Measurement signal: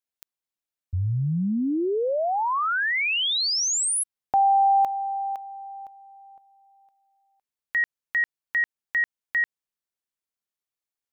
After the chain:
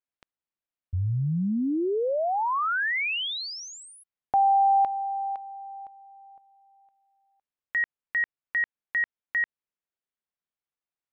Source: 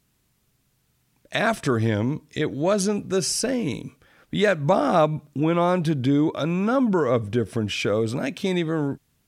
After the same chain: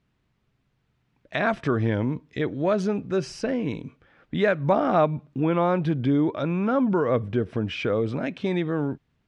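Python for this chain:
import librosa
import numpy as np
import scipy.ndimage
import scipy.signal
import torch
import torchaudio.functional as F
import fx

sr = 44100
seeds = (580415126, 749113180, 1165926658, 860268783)

y = scipy.signal.sosfilt(scipy.signal.butter(2, 2800.0, 'lowpass', fs=sr, output='sos'), x)
y = F.gain(torch.from_numpy(y), -1.5).numpy()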